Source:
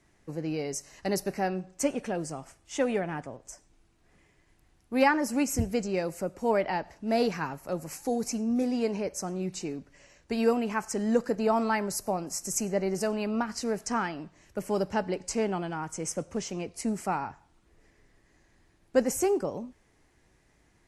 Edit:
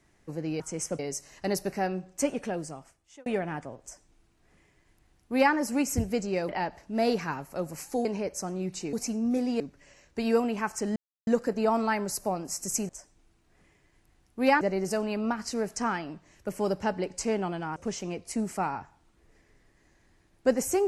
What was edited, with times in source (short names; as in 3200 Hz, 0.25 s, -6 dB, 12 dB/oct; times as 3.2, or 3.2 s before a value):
2.08–2.87 fade out
3.43–5.15 copy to 12.71
6.1–6.62 cut
8.18–8.85 move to 9.73
11.09 insert silence 0.31 s
15.86–16.25 move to 0.6